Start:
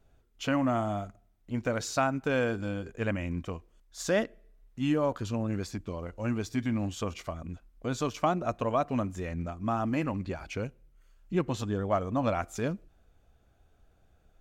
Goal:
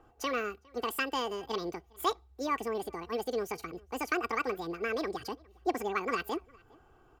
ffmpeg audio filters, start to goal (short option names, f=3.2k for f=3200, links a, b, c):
-filter_complex "[0:a]equalizer=f=150:t=o:w=2.6:g=2.5,aecho=1:1:5.2:0.61,acrossover=split=150|810|4100[a][b][c][d];[b]acompressor=mode=upward:threshold=-46dB:ratio=2.5[e];[a][e][c][d]amix=inputs=4:normalize=0,asplit=2[f][g];[g]adelay=816.3,volume=-26dB,highshelf=f=4k:g=-18.4[h];[f][h]amix=inputs=2:normalize=0,asetrate=88200,aresample=44100,volume=-5.5dB"